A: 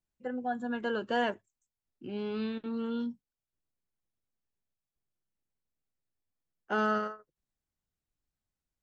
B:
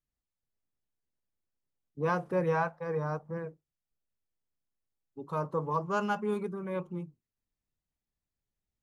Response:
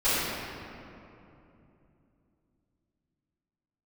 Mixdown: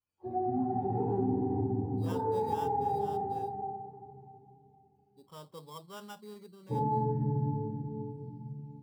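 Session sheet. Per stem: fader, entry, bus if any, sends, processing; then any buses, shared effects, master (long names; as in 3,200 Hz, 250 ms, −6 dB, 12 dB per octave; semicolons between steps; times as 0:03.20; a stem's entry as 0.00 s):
−5.5 dB, 0.00 s, send −4 dB, frequency axis turned over on the octave scale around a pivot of 430 Hz
−16.0 dB, 0.00 s, no send, sample-rate reduction 4,300 Hz, jitter 0%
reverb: on, RT60 2.9 s, pre-delay 3 ms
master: downward compressor 5 to 1, threshold −27 dBFS, peak gain reduction 8 dB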